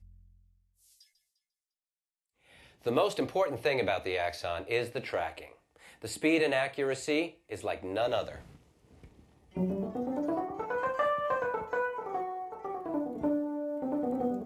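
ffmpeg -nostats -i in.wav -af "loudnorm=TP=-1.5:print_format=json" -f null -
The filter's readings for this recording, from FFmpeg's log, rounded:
"input_i" : "-32.6",
"input_tp" : "-14.8",
"input_lra" : "3.1",
"input_thresh" : "-43.5",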